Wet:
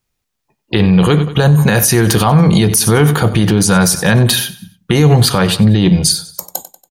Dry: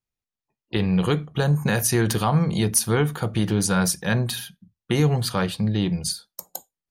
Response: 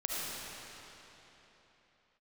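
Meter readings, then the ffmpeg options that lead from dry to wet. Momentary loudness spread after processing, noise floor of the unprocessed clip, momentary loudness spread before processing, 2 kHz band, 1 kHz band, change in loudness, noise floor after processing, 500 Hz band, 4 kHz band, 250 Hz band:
8 LU, below −85 dBFS, 11 LU, +11.0 dB, +10.5 dB, +11.5 dB, −73 dBFS, +10.5 dB, +13.0 dB, +11.5 dB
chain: -af "aecho=1:1:94|188|282:0.126|0.0529|0.0222,alimiter=level_in=17.5dB:limit=-1dB:release=50:level=0:latency=1,volume=-1dB"

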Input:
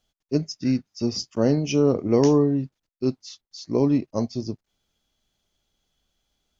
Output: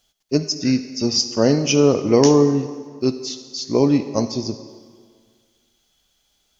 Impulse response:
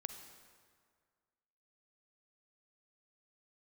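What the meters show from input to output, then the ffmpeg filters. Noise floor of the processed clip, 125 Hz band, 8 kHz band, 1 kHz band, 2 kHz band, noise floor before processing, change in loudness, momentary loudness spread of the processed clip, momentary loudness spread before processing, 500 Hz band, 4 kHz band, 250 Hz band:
−66 dBFS, +2.5 dB, can't be measured, +6.5 dB, +9.0 dB, −84 dBFS, +4.5 dB, 15 LU, 18 LU, +5.5 dB, +11.5 dB, +4.0 dB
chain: -filter_complex "[0:a]asplit=2[link_01][link_02];[link_02]highshelf=frequency=2700:gain=9[link_03];[1:a]atrim=start_sample=2205,lowshelf=frequency=210:gain=-11.5[link_04];[link_03][link_04]afir=irnorm=-1:irlink=0,volume=7dB[link_05];[link_01][link_05]amix=inputs=2:normalize=0,volume=-1.5dB"

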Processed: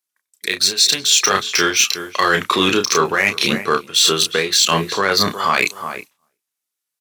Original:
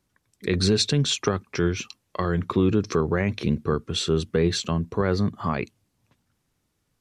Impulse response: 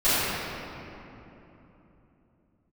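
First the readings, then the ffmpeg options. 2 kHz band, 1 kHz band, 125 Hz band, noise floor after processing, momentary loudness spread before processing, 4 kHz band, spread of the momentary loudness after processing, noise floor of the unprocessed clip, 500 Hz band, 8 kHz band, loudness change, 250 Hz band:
+16.0 dB, +13.5 dB, −6.5 dB, −82 dBFS, 8 LU, +14.0 dB, 7 LU, −74 dBFS, +4.0 dB, +17.0 dB, +9.0 dB, −0.5 dB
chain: -filter_complex "[0:a]asplit=2[link_01][link_02];[link_02]adynamicsmooth=sensitivity=8:basefreq=3900,volume=-2dB[link_03];[link_01][link_03]amix=inputs=2:normalize=0,aderivative,asplit=2[link_04][link_05];[link_05]adelay=365,lowpass=frequency=1300:poles=1,volume=-15dB,asplit=2[link_06][link_07];[link_07]adelay=365,lowpass=frequency=1300:poles=1,volume=0.18[link_08];[link_04][link_06][link_08]amix=inputs=3:normalize=0,agate=range=-33dB:threshold=-57dB:ratio=3:detection=peak,lowshelf=frequency=150:gain=-8,asplit=2[link_09][link_10];[link_10]adelay=31,volume=-6.5dB[link_11];[link_09][link_11]amix=inputs=2:normalize=0,areverse,acompressor=threshold=-41dB:ratio=16,areverse,alimiter=level_in=31.5dB:limit=-1dB:release=50:level=0:latency=1,volume=-1dB"

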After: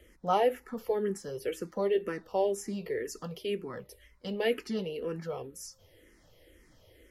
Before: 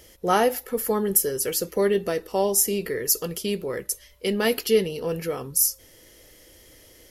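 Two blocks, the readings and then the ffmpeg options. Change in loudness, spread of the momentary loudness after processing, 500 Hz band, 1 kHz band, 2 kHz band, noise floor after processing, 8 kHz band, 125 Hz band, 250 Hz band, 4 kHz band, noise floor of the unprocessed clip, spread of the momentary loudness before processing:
−9.0 dB, 12 LU, −7.0 dB, −6.0 dB, −9.0 dB, −62 dBFS, −22.5 dB, −8.0 dB, −8.5 dB, −11.5 dB, −53 dBFS, 8 LU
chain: -filter_complex "[0:a]acrossover=split=8000[link_01][link_02];[link_02]acompressor=threshold=-37dB:ratio=4:attack=1:release=60[link_03];[link_01][link_03]amix=inputs=2:normalize=0,bass=frequency=250:gain=3,treble=frequency=4000:gain=-12,acrossover=split=180|3600[link_04][link_05][link_06];[link_04]acompressor=threshold=-46dB:ratio=6[link_07];[link_07][link_05][link_06]amix=inputs=3:normalize=0,asplit=2[link_08][link_09];[link_09]afreqshift=-2[link_10];[link_08][link_10]amix=inputs=2:normalize=1,volume=-4dB"

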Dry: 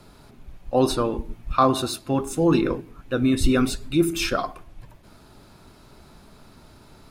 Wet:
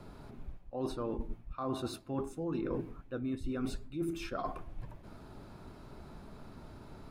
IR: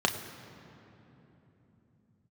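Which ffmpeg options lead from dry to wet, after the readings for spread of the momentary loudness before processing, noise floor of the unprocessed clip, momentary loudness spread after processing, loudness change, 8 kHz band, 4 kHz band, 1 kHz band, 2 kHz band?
8 LU, −51 dBFS, 15 LU, −16.0 dB, −21.0 dB, −19.5 dB, −17.0 dB, −18.0 dB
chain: -af "areverse,acompressor=threshold=-32dB:ratio=20,areverse,highshelf=frequency=2300:gain=-12"

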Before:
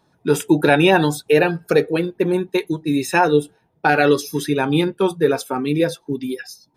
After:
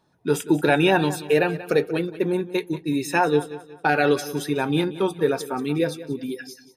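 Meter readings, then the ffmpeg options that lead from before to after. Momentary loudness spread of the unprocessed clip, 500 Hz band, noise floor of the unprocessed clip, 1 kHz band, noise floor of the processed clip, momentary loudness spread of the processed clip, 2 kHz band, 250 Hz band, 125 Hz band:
8 LU, −4.5 dB, −63 dBFS, −4.5 dB, −52 dBFS, 8 LU, −4.5 dB, −4.5 dB, −4.5 dB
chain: -af "aecho=1:1:184|368|552:0.168|0.0621|0.023,volume=-4.5dB"

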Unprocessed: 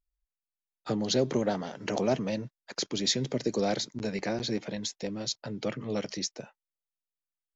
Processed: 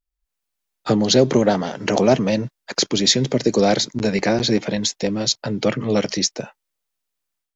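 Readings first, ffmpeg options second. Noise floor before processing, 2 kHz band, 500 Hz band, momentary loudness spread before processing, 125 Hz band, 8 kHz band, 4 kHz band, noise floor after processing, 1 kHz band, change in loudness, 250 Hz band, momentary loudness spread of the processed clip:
below −85 dBFS, +12.5 dB, +12.0 dB, 8 LU, +12.0 dB, can't be measured, +12.0 dB, −81 dBFS, +12.0 dB, +12.0 dB, +12.0 dB, 7 LU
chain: -af "dynaudnorm=framelen=180:gausssize=3:maxgain=13dB"

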